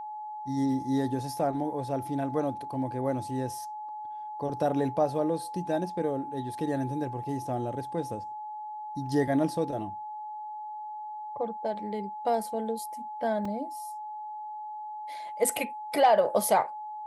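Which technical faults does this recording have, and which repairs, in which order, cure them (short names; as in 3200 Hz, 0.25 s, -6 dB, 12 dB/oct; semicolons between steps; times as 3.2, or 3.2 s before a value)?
tone 850 Hz -36 dBFS
13.45 gap 3.3 ms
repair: notch 850 Hz, Q 30; interpolate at 13.45, 3.3 ms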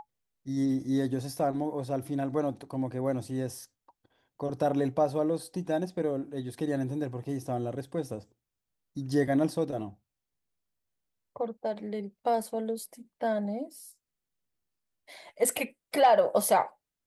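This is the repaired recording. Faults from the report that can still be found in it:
none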